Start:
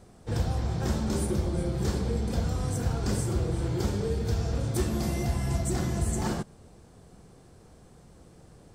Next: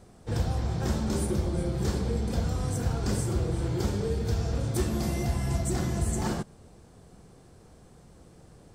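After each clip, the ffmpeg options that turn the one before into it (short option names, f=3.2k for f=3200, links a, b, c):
-af anull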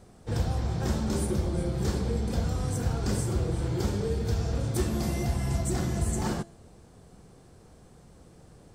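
-af "bandreject=f=338.7:t=h:w=4,bandreject=f=677.4:t=h:w=4,bandreject=f=1.0161k:t=h:w=4,bandreject=f=1.3548k:t=h:w=4,bandreject=f=1.6935k:t=h:w=4,bandreject=f=2.0322k:t=h:w=4,bandreject=f=2.3709k:t=h:w=4,bandreject=f=2.7096k:t=h:w=4,bandreject=f=3.0483k:t=h:w=4,bandreject=f=3.387k:t=h:w=4,bandreject=f=3.7257k:t=h:w=4,bandreject=f=4.0644k:t=h:w=4,bandreject=f=4.4031k:t=h:w=4,bandreject=f=4.7418k:t=h:w=4,bandreject=f=5.0805k:t=h:w=4,bandreject=f=5.4192k:t=h:w=4,bandreject=f=5.7579k:t=h:w=4,bandreject=f=6.0966k:t=h:w=4,bandreject=f=6.4353k:t=h:w=4,bandreject=f=6.774k:t=h:w=4,bandreject=f=7.1127k:t=h:w=4,bandreject=f=7.4514k:t=h:w=4,bandreject=f=7.7901k:t=h:w=4,bandreject=f=8.1288k:t=h:w=4,bandreject=f=8.4675k:t=h:w=4,bandreject=f=8.8062k:t=h:w=4,bandreject=f=9.1449k:t=h:w=4,bandreject=f=9.4836k:t=h:w=4,bandreject=f=9.8223k:t=h:w=4,bandreject=f=10.161k:t=h:w=4,bandreject=f=10.4997k:t=h:w=4,bandreject=f=10.8384k:t=h:w=4,bandreject=f=11.1771k:t=h:w=4,bandreject=f=11.5158k:t=h:w=4,bandreject=f=11.8545k:t=h:w=4"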